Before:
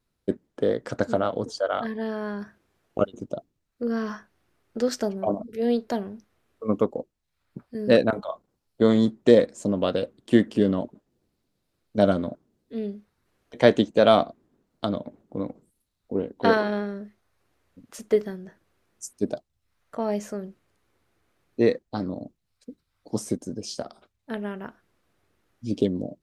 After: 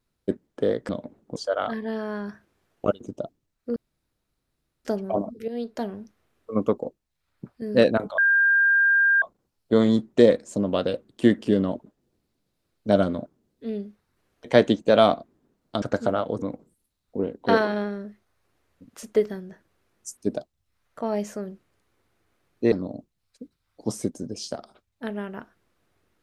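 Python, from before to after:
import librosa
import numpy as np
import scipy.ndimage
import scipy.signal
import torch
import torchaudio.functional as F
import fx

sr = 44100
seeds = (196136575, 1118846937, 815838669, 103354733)

y = fx.edit(x, sr, fx.swap(start_s=0.89, length_s=0.6, other_s=14.91, other_length_s=0.47),
    fx.room_tone_fill(start_s=3.89, length_s=1.09),
    fx.fade_in_from(start_s=5.61, length_s=0.49, floor_db=-12.5),
    fx.insert_tone(at_s=8.31, length_s=1.04, hz=1600.0, db=-15.5),
    fx.cut(start_s=21.68, length_s=0.31), tone=tone)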